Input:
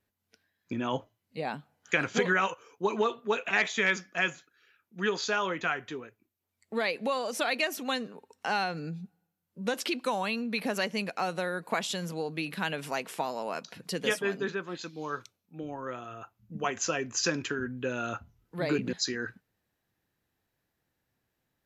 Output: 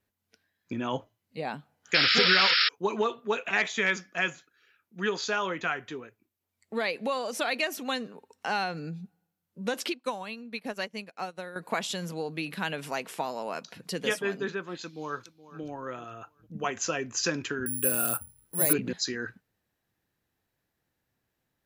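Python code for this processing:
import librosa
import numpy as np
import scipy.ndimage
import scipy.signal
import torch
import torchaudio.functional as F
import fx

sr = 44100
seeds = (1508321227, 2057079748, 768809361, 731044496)

y = fx.spec_paint(x, sr, seeds[0], shape='noise', start_s=1.94, length_s=0.75, low_hz=1200.0, high_hz=5500.0, level_db=-23.0)
y = fx.upward_expand(y, sr, threshold_db=-40.0, expansion=2.5, at=(9.92, 11.56))
y = fx.echo_throw(y, sr, start_s=14.81, length_s=0.81, ms=420, feedback_pct=35, wet_db=-16.0)
y = fx.resample_bad(y, sr, factor=4, down='none', up='zero_stuff', at=(17.66, 18.73))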